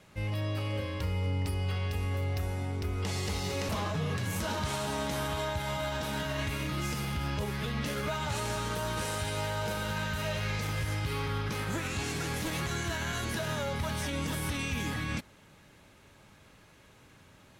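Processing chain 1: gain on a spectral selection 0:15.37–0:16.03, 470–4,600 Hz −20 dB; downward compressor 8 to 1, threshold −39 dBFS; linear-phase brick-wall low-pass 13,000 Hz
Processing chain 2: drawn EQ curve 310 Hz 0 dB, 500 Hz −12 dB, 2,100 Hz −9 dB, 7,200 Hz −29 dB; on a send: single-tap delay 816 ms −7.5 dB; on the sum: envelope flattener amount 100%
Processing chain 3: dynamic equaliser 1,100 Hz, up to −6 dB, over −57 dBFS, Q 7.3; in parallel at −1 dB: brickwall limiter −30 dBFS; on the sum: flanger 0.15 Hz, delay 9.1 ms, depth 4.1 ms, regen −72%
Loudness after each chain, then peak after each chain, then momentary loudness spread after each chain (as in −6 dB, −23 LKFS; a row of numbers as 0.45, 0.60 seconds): −42.5, −29.5, −34.0 LKFS; −29.0, −16.5, −22.5 dBFS; 16, 1, 1 LU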